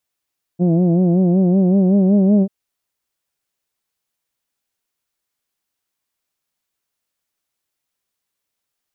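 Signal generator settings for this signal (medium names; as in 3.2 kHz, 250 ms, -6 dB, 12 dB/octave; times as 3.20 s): formant vowel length 1.89 s, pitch 170 Hz, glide +3 st, F1 260 Hz, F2 640 Hz, F3 2.5 kHz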